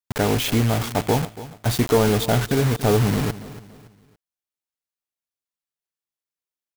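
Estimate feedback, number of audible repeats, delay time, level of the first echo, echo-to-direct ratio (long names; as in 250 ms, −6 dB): 36%, 3, 283 ms, −16.0 dB, −15.5 dB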